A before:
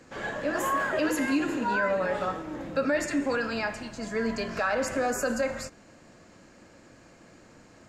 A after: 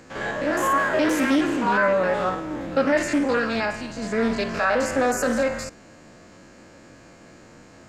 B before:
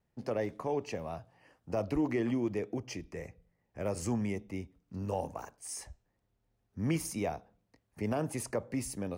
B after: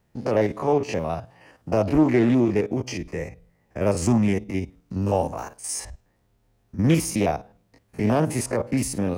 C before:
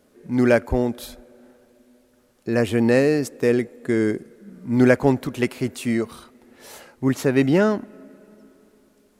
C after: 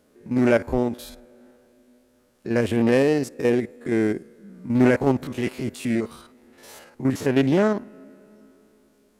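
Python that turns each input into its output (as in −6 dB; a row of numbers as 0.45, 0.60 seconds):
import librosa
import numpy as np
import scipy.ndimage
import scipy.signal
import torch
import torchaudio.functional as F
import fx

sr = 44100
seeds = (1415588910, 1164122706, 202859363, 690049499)

y = fx.spec_steps(x, sr, hold_ms=50)
y = fx.doppler_dist(y, sr, depth_ms=0.25)
y = y * 10.0 ** (-24 / 20.0) / np.sqrt(np.mean(np.square(y)))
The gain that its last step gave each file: +7.0, +13.5, −0.5 decibels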